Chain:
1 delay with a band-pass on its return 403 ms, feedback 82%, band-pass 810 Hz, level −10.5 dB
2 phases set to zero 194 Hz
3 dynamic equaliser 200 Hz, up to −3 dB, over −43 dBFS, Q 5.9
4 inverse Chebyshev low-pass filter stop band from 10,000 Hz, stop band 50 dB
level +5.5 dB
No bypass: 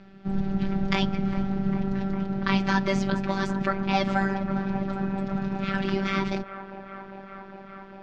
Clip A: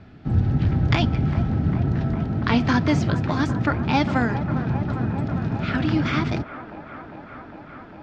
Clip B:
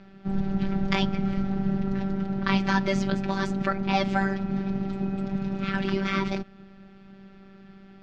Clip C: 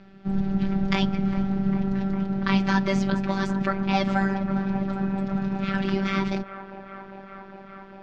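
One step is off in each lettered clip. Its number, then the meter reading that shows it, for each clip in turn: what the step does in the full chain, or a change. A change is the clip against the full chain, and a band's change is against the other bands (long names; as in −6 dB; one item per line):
2, 125 Hz band +7.0 dB
1, change in momentary loudness spread −11 LU
3, change in momentary loudness spread +1 LU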